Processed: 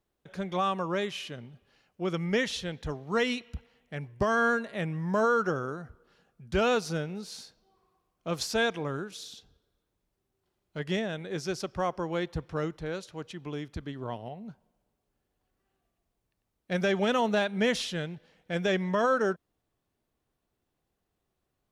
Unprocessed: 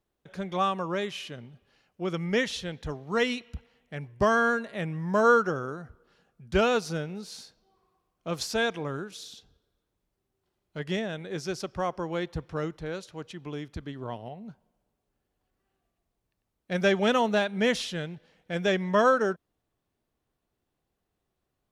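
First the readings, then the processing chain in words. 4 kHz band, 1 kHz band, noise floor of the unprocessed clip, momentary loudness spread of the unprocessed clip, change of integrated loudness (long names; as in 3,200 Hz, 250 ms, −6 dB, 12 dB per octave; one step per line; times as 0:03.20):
−1.0 dB, −2.5 dB, −82 dBFS, 19 LU, −2.0 dB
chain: brickwall limiter −17.5 dBFS, peak gain reduction 6.5 dB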